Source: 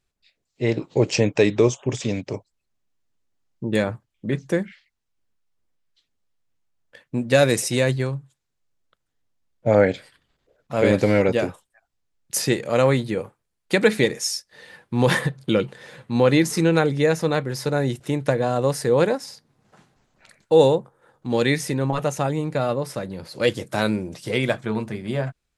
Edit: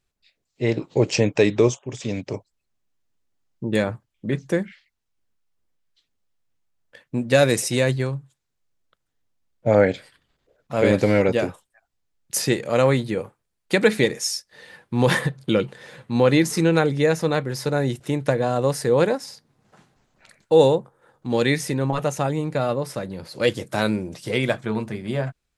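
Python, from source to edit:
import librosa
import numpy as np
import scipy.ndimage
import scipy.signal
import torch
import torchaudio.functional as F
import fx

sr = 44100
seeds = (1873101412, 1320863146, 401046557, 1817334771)

y = fx.edit(x, sr, fx.fade_in_from(start_s=1.79, length_s=0.44, floor_db=-13.0), tone=tone)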